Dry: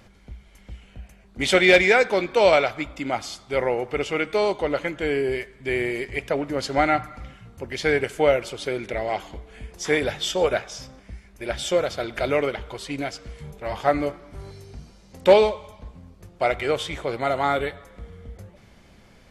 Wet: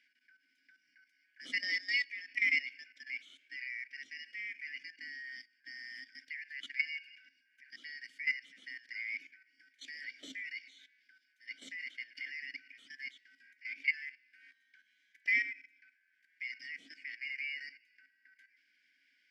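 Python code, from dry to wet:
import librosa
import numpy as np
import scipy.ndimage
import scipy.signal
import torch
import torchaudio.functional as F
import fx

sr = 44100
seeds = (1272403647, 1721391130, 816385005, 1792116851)

y = fx.band_shuffle(x, sr, order='3142')
y = fx.tilt_eq(y, sr, slope=3.0)
y = fx.level_steps(y, sr, step_db=13)
y = fx.vowel_filter(y, sr, vowel='i')
y = F.gain(torch.from_numpy(y), -4.0).numpy()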